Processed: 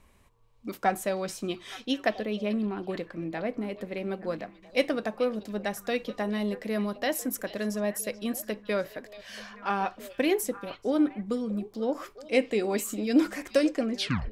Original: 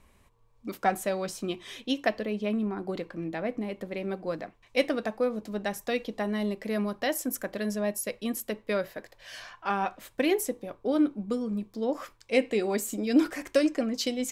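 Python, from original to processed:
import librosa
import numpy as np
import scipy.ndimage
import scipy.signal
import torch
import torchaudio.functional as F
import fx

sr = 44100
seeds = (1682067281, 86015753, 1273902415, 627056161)

y = fx.tape_stop_end(x, sr, length_s=0.38)
y = fx.echo_stepped(y, sr, ms=435, hz=3700.0, octaves=-1.4, feedback_pct=70, wet_db=-10.5)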